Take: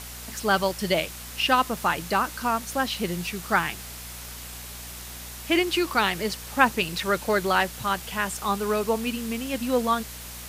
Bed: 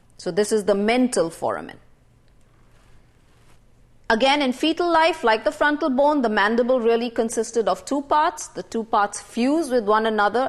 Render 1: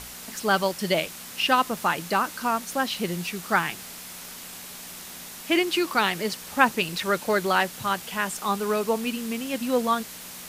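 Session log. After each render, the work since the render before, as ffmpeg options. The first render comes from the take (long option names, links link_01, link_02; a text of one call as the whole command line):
ffmpeg -i in.wav -af "bandreject=frequency=60:width_type=h:width=4,bandreject=frequency=120:width_type=h:width=4" out.wav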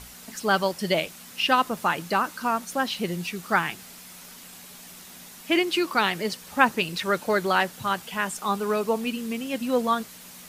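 ffmpeg -i in.wav -af "afftdn=noise_reduction=6:noise_floor=-41" out.wav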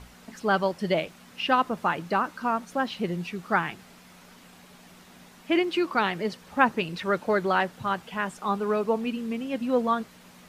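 ffmpeg -i in.wav -af "lowpass=frequency=1700:poles=1" out.wav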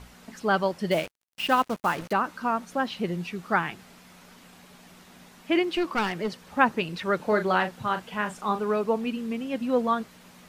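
ffmpeg -i in.wav -filter_complex "[0:a]asettb=1/sr,asplit=3[link_01][link_02][link_03];[link_01]atrim=end=0.914[link_04];[link_02]atrim=start=0.91:end=2.13,asetpts=PTS-STARTPTS,afade=type=in:duration=0.004:curve=qsin,afade=type=out:start_time=1.216:duration=0.004:curve=qsin,acrusher=bits=5:mix=0:aa=0.5[link_05];[link_03]atrim=start=2.126[link_06];[link_04][link_05]acrossfade=duration=0.004:curve1=hsin:curve2=qsin[link_07];[link_07][link_06]acrossfade=duration=0.004:curve1=qsin:curve2=hsin,asettb=1/sr,asplit=3[link_08][link_09][link_10];[link_08]atrim=end=5.734[link_11];[link_09]atrim=start=5.73:end=6.42,asetpts=PTS-STARTPTS,afade=type=in:duration=0.004:curve=qsin,afade=type=out:start_time=0.686:duration=0.004:curve=qsin,aeval=exprs='clip(val(0),-1,0.0596)':channel_layout=same[link_12];[link_10]atrim=start=6.416[link_13];[link_11][link_12]acrossfade=duration=0.004:curve1=hsin:curve2=qsin[link_14];[link_14][link_13]acrossfade=duration=0.004:curve1=qsin:curve2=hsin,asettb=1/sr,asplit=3[link_15][link_16][link_17];[link_15]atrim=end=7.164[link_18];[link_16]atrim=start=7.16:end=8.62,asetpts=PTS-STARTPTS,afade=type=in:duration=0.004:curve=qsin,afade=type=out:start_time=1.456:duration=0.004:curve=qsin,asplit=2[link_19][link_20];[link_20]adelay=38,volume=-8.5dB[link_21];[link_19][link_21]amix=inputs=2:normalize=0,atrim=end_sample=64386[link_22];[link_17]atrim=start=8.616[link_23];[link_18][link_22]acrossfade=duration=0.004:curve1=hsin:curve2=qsin[link_24];[link_24][link_23]acrossfade=duration=0.004:curve1=qsin:curve2=hsin" out.wav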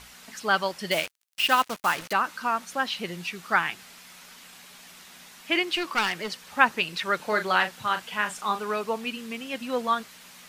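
ffmpeg -i in.wav -af "tiltshelf=frequency=940:gain=-8" out.wav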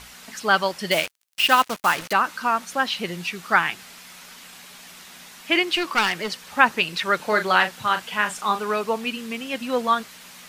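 ffmpeg -i in.wav -af "volume=4.5dB,alimiter=limit=-1dB:level=0:latency=1" out.wav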